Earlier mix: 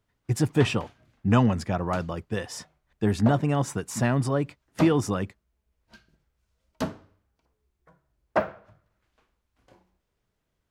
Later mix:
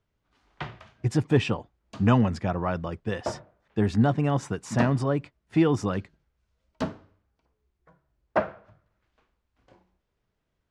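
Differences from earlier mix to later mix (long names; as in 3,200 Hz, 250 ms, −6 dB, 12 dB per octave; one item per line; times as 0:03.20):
speech: entry +0.75 s
master: add high-frequency loss of the air 74 metres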